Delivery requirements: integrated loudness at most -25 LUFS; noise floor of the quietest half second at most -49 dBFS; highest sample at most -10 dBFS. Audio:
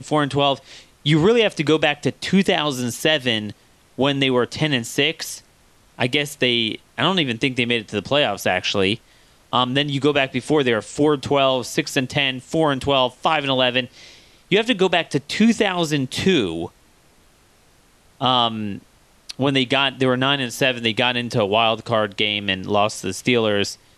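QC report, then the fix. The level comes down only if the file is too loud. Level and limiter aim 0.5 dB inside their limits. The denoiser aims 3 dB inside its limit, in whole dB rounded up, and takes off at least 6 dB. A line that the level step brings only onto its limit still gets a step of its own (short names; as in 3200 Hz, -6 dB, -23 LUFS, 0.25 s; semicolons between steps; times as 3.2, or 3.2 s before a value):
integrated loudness -19.5 LUFS: fail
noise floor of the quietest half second -55 dBFS: OK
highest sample -3.0 dBFS: fail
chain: gain -6 dB; limiter -10.5 dBFS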